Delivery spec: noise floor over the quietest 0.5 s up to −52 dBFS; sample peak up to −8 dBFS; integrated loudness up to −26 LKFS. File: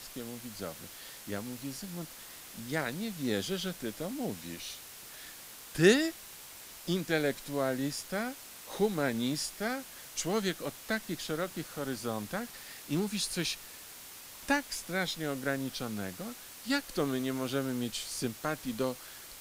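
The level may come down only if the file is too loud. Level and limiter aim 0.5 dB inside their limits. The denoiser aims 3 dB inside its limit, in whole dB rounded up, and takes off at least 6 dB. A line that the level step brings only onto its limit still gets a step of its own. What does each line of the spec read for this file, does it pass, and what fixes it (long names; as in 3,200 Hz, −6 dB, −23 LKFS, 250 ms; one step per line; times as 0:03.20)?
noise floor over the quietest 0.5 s −49 dBFS: out of spec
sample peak −10.0 dBFS: in spec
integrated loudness −34.0 LKFS: in spec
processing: broadband denoise 6 dB, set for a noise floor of −49 dBFS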